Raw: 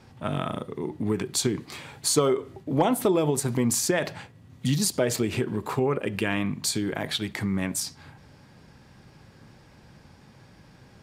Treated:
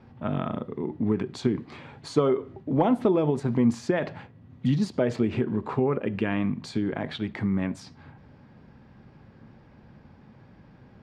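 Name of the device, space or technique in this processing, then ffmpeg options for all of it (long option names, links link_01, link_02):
phone in a pocket: -af "lowpass=3800,equalizer=frequency=230:width_type=o:width=0.34:gain=5,highshelf=frequency=2200:gain=-9.5"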